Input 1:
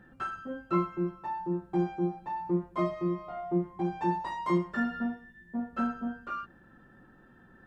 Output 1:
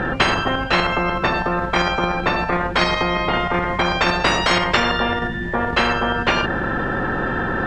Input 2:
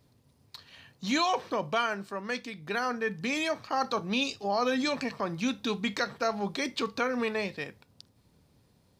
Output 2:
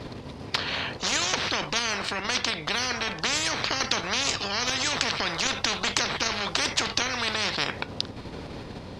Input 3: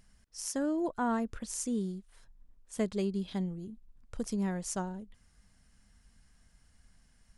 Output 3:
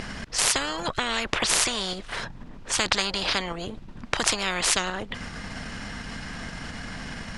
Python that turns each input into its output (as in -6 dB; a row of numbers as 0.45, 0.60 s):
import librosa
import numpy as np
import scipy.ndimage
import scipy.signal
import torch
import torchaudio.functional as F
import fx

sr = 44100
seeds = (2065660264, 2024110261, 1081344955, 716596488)

p1 = scipy.signal.sosfilt(scipy.signal.butter(2, 3700.0, 'lowpass', fs=sr, output='sos'), x)
p2 = fx.level_steps(p1, sr, step_db=13)
p3 = p1 + (p2 * 10.0 ** (0.0 / 20.0))
p4 = fx.spectral_comp(p3, sr, ratio=10.0)
y = p4 * 10.0 ** (-1.5 / 20.0) / np.max(np.abs(p4))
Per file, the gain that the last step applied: +8.5, +8.5, +16.0 dB